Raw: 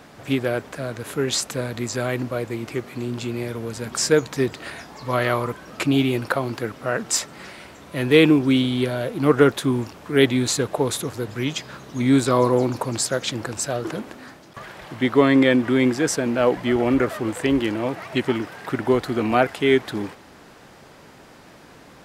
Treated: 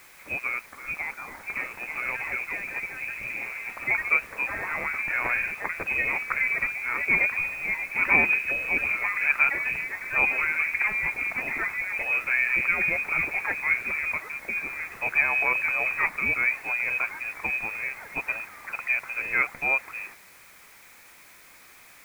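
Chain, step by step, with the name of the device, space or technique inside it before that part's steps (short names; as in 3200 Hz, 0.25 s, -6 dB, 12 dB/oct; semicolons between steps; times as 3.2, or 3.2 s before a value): 0.66–1.43 Bessel high-pass 940 Hz, order 2; echoes that change speed 0.641 s, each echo +4 st, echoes 3; scrambled radio voice (BPF 330–3200 Hz; inverted band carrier 2800 Hz; white noise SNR 26 dB); gain -5.5 dB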